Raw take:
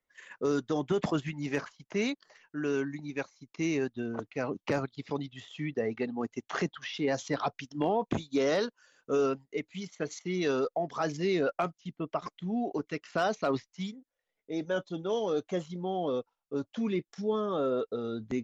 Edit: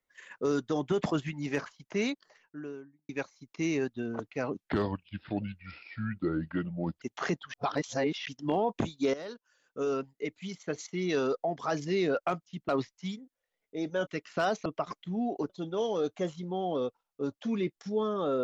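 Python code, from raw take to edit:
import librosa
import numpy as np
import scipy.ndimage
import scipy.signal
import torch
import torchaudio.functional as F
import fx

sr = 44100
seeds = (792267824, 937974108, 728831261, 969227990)

y = fx.studio_fade_out(x, sr, start_s=2.05, length_s=1.04)
y = fx.edit(y, sr, fx.speed_span(start_s=4.6, length_s=1.74, speed=0.72),
    fx.reverse_span(start_s=6.86, length_s=0.72),
    fx.fade_in_from(start_s=8.46, length_s=1.23, floor_db=-16.0),
    fx.swap(start_s=12.01, length_s=0.84, other_s=13.44, other_length_s=1.38), tone=tone)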